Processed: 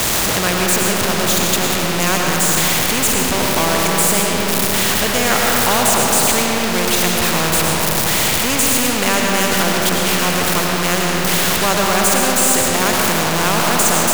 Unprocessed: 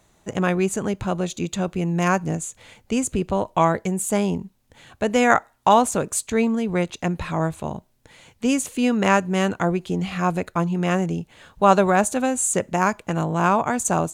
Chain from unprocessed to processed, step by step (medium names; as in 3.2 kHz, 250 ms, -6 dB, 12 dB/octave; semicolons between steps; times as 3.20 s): jump at every zero crossing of -18 dBFS; algorithmic reverb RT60 3 s, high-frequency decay 0.4×, pre-delay 65 ms, DRR -0.5 dB; spectrum-flattening compressor 2:1; trim -2 dB